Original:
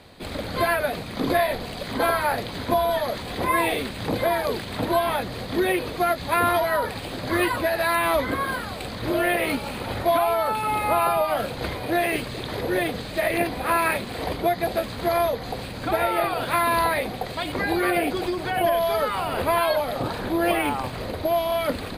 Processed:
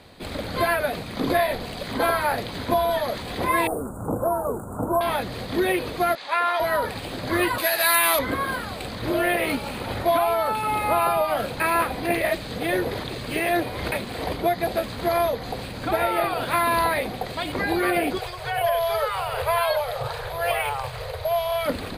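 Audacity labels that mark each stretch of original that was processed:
3.670000	5.010000	Chebyshev band-stop 1400–7100 Hz, order 5
6.150000	6.600000	BPF 740–5900 Hz
7.580000	8.190000	tilt +4 dB/oct
11.600000	13.920000	reverse
18.180000	21.660000	elliptic band-stop 140–450 Hz

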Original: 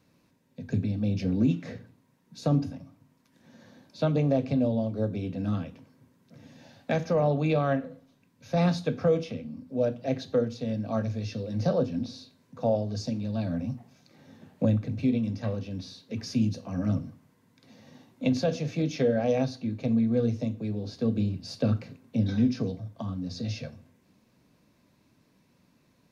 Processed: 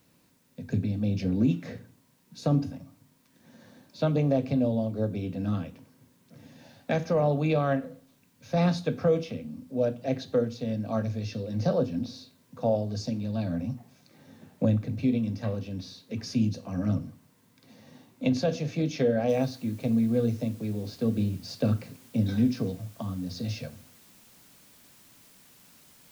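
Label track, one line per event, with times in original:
19.290000	19.290000	noise floor step -70 dB -57 dB

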